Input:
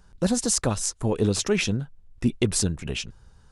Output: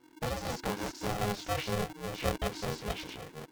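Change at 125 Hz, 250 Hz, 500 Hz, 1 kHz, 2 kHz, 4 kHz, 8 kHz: -10.5, -13.0, -7.5, +2.0, -5.5, -8.5, -18.0 dB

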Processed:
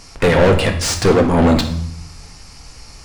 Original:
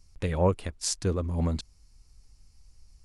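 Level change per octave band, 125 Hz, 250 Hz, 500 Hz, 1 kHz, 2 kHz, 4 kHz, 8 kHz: +11.5, +16.0, +16.0, +16.0, +23.0, +15.5, +9.5 dB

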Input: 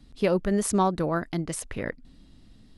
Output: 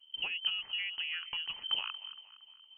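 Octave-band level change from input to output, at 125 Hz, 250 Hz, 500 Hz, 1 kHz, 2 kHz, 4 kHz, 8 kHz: under -35 dB, under -40 dB, -36.5 dB, -21.0 dB, -0.5 dB, +13.0 dB, under -40 dB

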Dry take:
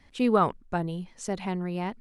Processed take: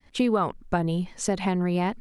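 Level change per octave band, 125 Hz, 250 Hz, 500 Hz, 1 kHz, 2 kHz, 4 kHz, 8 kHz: +5.0, +3.5, +1.5, +0.5, +4.0, +6.0, +8.5 dB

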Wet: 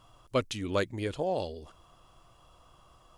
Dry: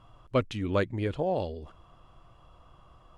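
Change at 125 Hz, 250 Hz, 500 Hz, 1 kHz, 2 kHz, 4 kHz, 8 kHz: -5.5 dB, -3.5 dB, -2.0 dB, -1.5 dB, -0.5 dB, +3.0 dB, n/a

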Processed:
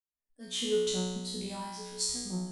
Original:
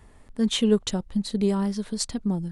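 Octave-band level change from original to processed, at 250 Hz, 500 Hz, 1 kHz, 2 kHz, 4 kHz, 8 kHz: -14.0, -5.5, -4.5, -6.5, -3.5, -0.5 dB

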